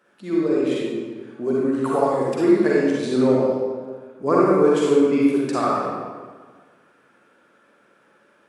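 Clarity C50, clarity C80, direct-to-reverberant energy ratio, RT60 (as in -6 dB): -4.0 dB, -0.5 dB, -6.0 dB, 1.5 s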